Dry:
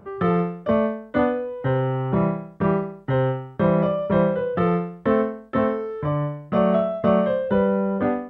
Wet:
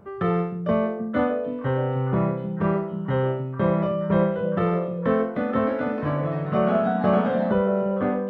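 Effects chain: repeats whose band climbs or falls 308 ms, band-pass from 190 Hz, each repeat 1.4 oct, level -4.5 dB; 5.05–7.52 s: ever faster or slower copies 308 ms, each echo +2 st, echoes 3, each echo -6 dB; trim -2.5 dB

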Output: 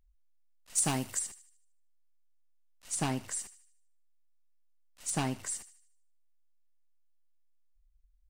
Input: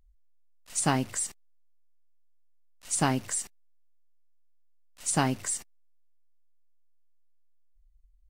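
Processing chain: one-sided wavefolder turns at -19 dBFS; 0.75–1.19 s: treble shelf 7 kHz +11.5 dB; thinning echo 76 ms, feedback 44%, high-pass 1 kHz, level -15 dB; trim -5.5 dB

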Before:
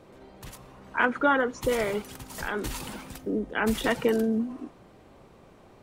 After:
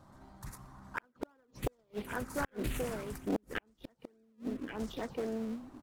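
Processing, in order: touch-sensitive phaser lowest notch 410 Hz, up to 2.8 kHz, full sweep at -21 dBFS; in parallel at -11.5 dB: decimation with a swept rate 41×, swing 100% 2.8 Hz; on the sum: delay 1127 ms -10.5 dB; inverted gate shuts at -18 dBFS, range -41 dB; loudspeaker Doppler distortion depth 0.45 ms; trim -2.5 dB

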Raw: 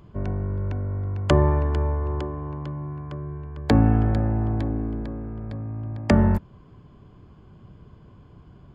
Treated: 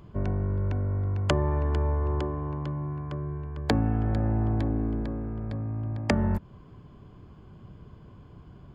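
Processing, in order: compression 6:1, threshold -21 dBFS, peak gain reduction 9 dB

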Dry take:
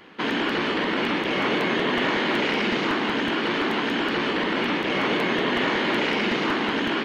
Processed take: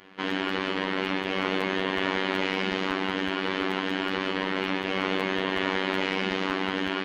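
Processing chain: robot voice 95.3 Hz; trim -2 dB

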